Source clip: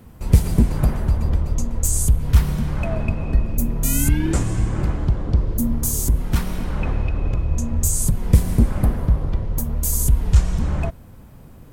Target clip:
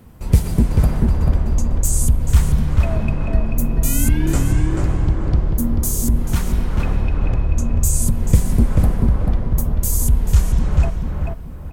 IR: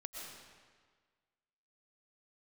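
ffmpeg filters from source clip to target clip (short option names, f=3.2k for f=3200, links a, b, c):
-filter_complex "[0:a]asplit=2[a][b];[b]adelay=438,lowpass=f=2.6k:p=1,volume=-3dB,asplit=2[c][d];[d]adelay=438,lowpass=f=2.6k:p=1,volume=0.31,asplit=2[e][f];[f]adelay=438,lowpass=f=2.6k:p=1,volume=0.31,asplit=2[g][h];[h]adelay=438,lowpass=f=2.6k:p=1,volume=0.31[i];[a][c][e][g][i]amix=inputs=5:normalize=0"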